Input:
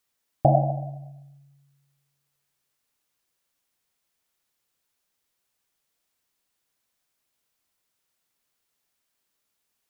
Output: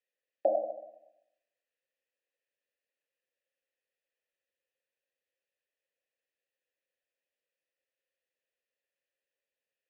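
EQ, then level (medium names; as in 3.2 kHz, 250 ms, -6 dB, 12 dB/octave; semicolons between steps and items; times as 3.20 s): vowel filter e; steep high-pass 220 Hz 96 dB/octave; +3.0 dB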